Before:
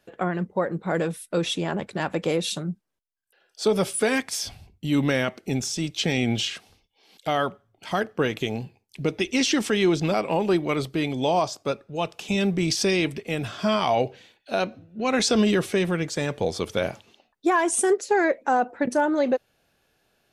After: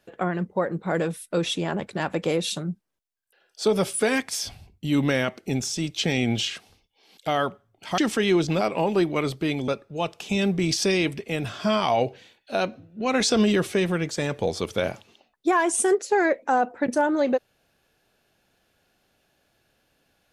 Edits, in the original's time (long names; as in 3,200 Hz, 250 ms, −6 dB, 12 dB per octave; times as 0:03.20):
0:07.98–0:09.51: remove
0:11.21–0:11.67: remove